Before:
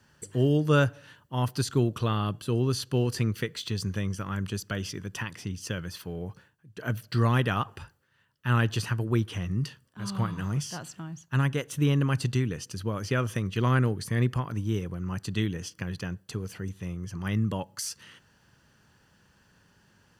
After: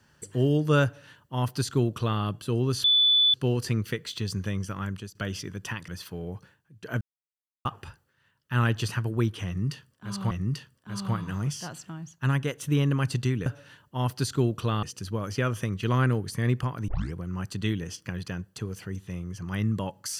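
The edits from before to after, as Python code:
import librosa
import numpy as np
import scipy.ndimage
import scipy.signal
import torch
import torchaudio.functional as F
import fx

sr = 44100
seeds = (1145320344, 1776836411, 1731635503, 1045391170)

y = fx.edit(x, sr, fx.duplicate(start_s=0.84, length_s=1.37, to_s=12.56),
    fx.insert_tone(at_s=2.84, length_s=0.5, hz=3480.0, db=-17.0),
    fx.fade_out_to(start_s=4.33, length_s=0.32, floor_db=-15.0),
    fx.cut(start_s=5.38, length_s=0.44),
    fx.silence(start_s=6.95, length_s=0.64),
    fx.repeat(start_s=9.41, length_s=0.84, count=2),
    fx.tape_start(start_s=14.61, length_s=0.26), tone=tone)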